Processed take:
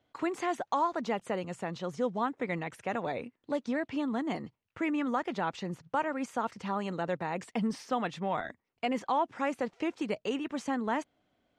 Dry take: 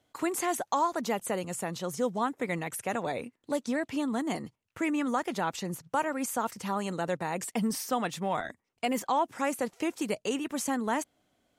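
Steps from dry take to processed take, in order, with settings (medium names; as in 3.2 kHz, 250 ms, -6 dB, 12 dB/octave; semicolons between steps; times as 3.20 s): low-pass 3.8 kHz 12 dB/octave; trim -1.5 dB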